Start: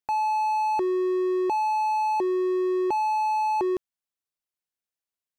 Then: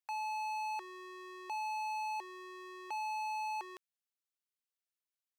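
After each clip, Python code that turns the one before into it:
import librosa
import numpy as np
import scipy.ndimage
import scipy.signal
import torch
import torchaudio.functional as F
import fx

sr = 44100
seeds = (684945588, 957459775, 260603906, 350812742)

y = scipy.signal.sosfilt(scipy.signal.butter(2, 1400.0, 'highpass', fs=sr, output='sos'), x)
y = y * librosa.db_to_amplitude(-5.0)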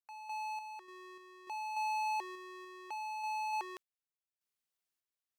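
y = fx.tremolo_random(x, sr, seeds[0], hz=3.4, depth_pct=80)
y = y * librosa.db_to_amplitude(3.5)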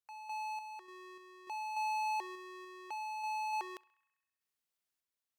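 y = fx.echo_banded(x, sr, ms=66, feedback_pct=74, hz=1800.0, wet_db=-20.5)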